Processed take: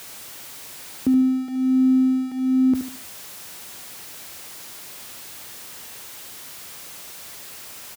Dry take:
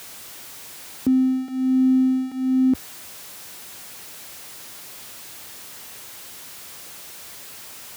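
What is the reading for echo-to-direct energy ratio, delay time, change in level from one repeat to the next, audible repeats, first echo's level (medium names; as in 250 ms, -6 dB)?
-8.5 dB, 74 ms, -9.0 dB, 3, -9.0 dB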